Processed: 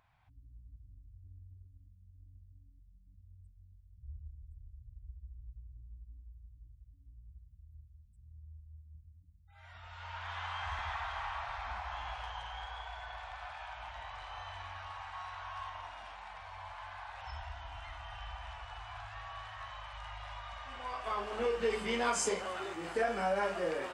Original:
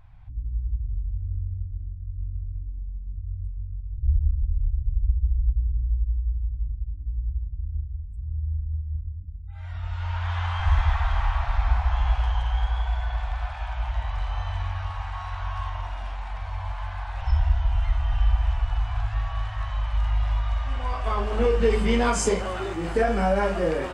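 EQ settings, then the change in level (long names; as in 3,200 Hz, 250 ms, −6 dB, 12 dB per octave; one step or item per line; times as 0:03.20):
high-pass filter 600 Hz 6 dB per octave
−6.0 dB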